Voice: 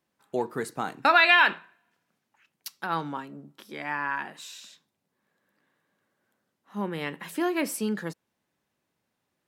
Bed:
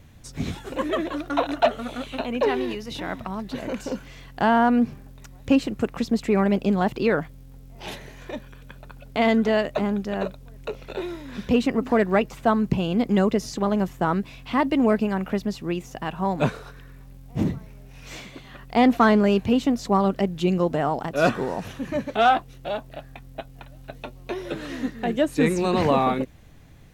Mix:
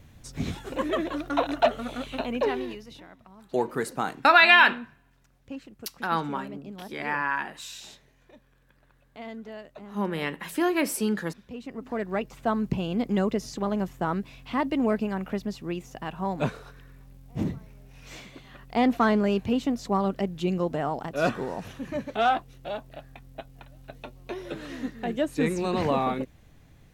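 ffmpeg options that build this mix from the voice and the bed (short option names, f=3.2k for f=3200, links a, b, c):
-filter_complex "[0:a]adelay=3200,volume=2.5dB[a];[1:a]volume=13dB,afade=t=out:st=2.28:d=0.81:silence=0.125893,afade=t=in:st=11.55:d=1.07:silence=0.177828[b];[a][b]amix=inputs=2:normalize=0"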